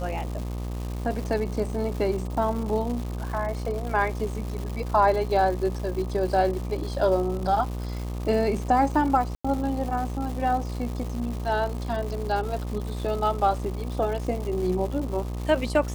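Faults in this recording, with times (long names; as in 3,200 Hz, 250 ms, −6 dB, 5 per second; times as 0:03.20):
mains buzz 60 Hz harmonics 21 −31 dBFS
surface crackle 340 per second −33 dBFS
0:09.35–0:09.45: drop-out 95 ms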